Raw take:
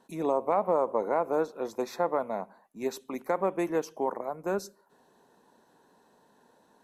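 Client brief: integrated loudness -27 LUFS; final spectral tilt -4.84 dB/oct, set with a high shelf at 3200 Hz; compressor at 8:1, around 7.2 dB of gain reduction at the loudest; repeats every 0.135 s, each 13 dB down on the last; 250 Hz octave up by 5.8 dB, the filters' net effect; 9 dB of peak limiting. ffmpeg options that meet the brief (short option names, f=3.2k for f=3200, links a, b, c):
-af "equalizer=f=250:t=o:g=8,highshelf=f=3.2k:g=7,acompressor=threshold=-27dB:ratio=8,alimiter=level_in=2dB:limit=-24dB:level=0:latency=1,volume=-2dB,aecho=1:1:135|270|405:0.224|0.0493|0.0108,volume=10dB"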